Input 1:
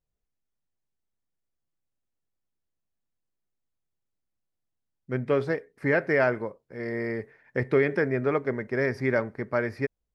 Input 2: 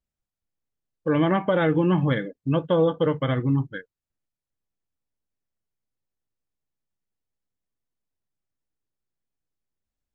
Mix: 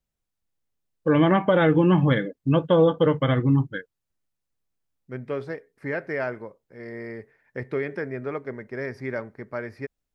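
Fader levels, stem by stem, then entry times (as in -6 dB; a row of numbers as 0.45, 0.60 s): -5.5, +2.5 dB; 0.00, 0.00 s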